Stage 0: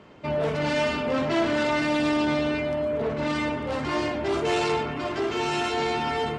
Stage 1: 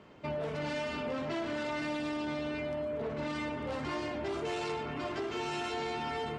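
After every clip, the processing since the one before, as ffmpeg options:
-af "acompressor=threshold=0.0447:ratio=6,volume=0.531"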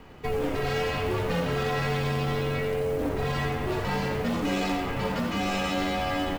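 -filter_complex "[0:a]acrusher=bits=6:mode=log:mix=0:aa=0.000001,asplit=8[s0][s1][s2][s3][s4][s5][s6][s7];[s1]adelay=87,afreqshift=91,volume=0.335[s8];[s2]adelay=174,afreqshift=182,volume=0.188[s9];[s3]adelay=261,afreqshift=273,volume=0.105[s10];[s4]adelay=348,afreqshift=364,volume=0.0589[s11];[s5]adelay=435,afreqshift=455,volume=0.0331[s12];[s6]adelay=522,afreqshift=546,volume=0.0184[s13];[s7]adelay=609,afreqshift=637,volume=0.0104[s14];[s0][s8][s9][s10][s11][s12][s13][s14]amix=inputs=8:normalize=0,afreqshift=-160,volume=2.37"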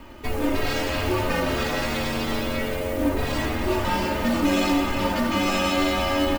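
-af "highshelf=f=9400:g=6.5,aecho=1:1:3.3:0.78,aecho=1:1:313:0.335,volume=1.41"

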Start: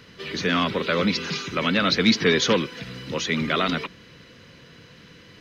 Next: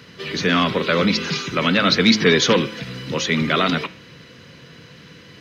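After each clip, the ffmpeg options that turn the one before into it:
-af "highpass=71,equalizer=f=140:w=3.7:g=3,bandreject=f=107:t=h:w=4,bandreject=f=214:t=h:w=4,bandreject=f=321:t=h:w=4,bandreject=f=428:t=h:w=4,bandreject=f=535:t=h:w=4,bandreject=f=642:t=h:w=4,bandreject=f=749:t=h:w=4,bandreject=f=856:t=h:w=4,bandreject=f=963:t=h:w=4,bandreject=f=1070:t=h:w=4,bandreject=f=1177:t=h:w=4,bandreject=f=1284:t=h:w=4,bandreject=f=1391:t=h:w=4,bandreject=f=1498:t=h:w=4,bandreject=f=1605:t=h:w=4,bandreject=f=1712:t=h:w=4,bandreject=f=1819:t=h:w=4,bandreject=f=1926:t=h:w=4,bandreject=f=2033:t=h:w=4,bandreject=f=2140:t=h:w=4,bandreject=f=2247:t=h:w=4,bandreject=f=2354:t=h:w=4,bandreject=f=2461:t=h:w=4,bandreject=f=2568:t=h:w=4,bandreject=f=2675:t=h:w=4,bandreject=f=2782:t=h:w=4,bandreject=f=2889:t=h:w=4,bandreject=f=2996:t=h:w=4,bandreject=f=3103:t=h:w=4,bandreject=f=3210:t=h:w=4,bandreject=f=3317:t=h:w=4,bandreject=f=3424:t=h:w=4,bandreject=f=3531:t=h:w=4,bandreject=f=3638:t=h:w=4,bandreject=f=3745:t=h:w=4,volume=1.68"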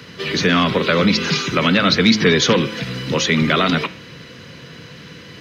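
-filter_complex "[0:a]acrossover=split=160[s0][s1];[s1]acompressor=threshold=0.0891:ratio=2[s2];[s0][s2]amix=inputs=2:normalize=0,volume=1.88"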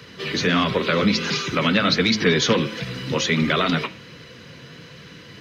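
-af "flanger=delay=1.7:depth=7.4:regen=-47:speed=1.4:shape=sinusoidal"

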